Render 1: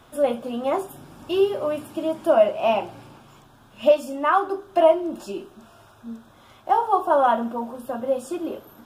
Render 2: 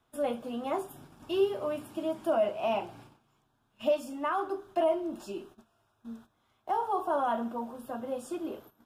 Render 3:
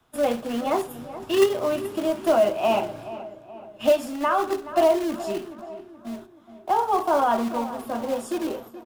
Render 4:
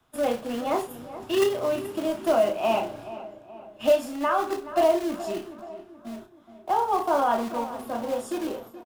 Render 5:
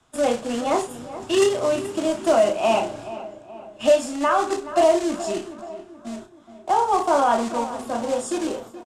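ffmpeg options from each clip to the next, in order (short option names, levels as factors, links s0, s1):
-filter_complex "[0:a]bandreject=f=550:w=12,agate=range=0.2:threshold=0.00631:ratio=16:detection=peak,acrossover=split=510|4600[s0][s1][s2];[s1]alimiter=limit=0.141:level=0:latency=1:release=16[s3];[s0][s3][s2]amix=inputs=3:normalize=0,volume=0.447"
-filter_complex "[0:a]acrossover=split=140|500|2400[s0][s1][s2][s3];[s1]acrusher=bits=2:mode=log:mix=0:aa=0.000001[s4];[s0][s4][s2][s3]amix=inputs=4:normalize=0,asplit=2[s5][s6];[s6]adelay=426,lowpass=f=2300:p=1,volume=0.2,asplit=2[s7][s8];[s8]adelay=426,lowpass=f=2300:p=1,volume=0.51,asplit=2[s9][s10];[s10]adelay=426,lowpass=f=2300:p=1,volume=0.51,asplit=2[s11][s12];[s12]adelay=426,lowpass=f=2300:p=1,volume=0.51,asplit=2[s13][s14];[s14]adelay=426,lowpass=f=2300:p=1,volume=0.51[s15];[s5][s7][s9][s11][s13][s15]amix=inputs=6:normalize=0,volume=2.51"
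-filter_complex "[0:a]asplit=2[s0][s1];[s1]adelay=32,volume=0.376[s2];[s0][s2]amix=inputs=2:normalize=0,volume=0.75"
-filter_complex "[0:a]lowpass=f=7800:t=q:w=2.6,asplit=2[s0][s1];[s1]asoftclip=type=hard:threshold=0.133,volume=0.376[s2];[s0][s2]amix=inputs=2:normalize=0,volume=1.19"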